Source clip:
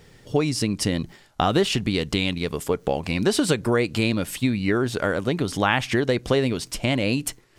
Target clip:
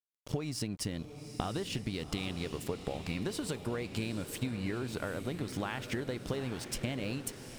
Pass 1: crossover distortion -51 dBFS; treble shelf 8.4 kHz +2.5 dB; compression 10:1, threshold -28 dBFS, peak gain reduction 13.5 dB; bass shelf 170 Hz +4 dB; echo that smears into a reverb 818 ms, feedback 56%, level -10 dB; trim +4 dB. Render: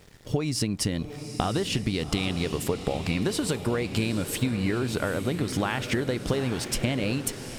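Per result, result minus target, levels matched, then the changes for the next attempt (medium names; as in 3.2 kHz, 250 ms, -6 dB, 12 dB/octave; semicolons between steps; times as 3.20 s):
compression: peak gain reduction -9 dB; crossover distortion: distortion -10 dB
change: compression 10:1, threshold -38 dBFS, peak gain reduction 22.5 dB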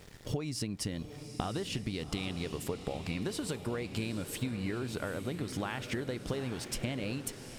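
crossover distortion: distortion -10 dB
change: crossover distortion -40 dBFS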